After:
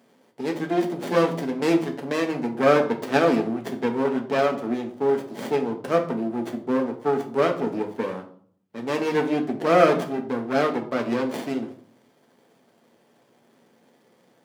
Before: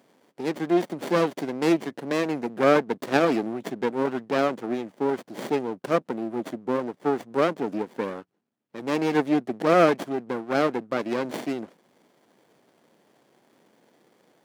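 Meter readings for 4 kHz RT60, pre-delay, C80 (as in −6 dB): 0.40 s, 4 ms, 15.0 dB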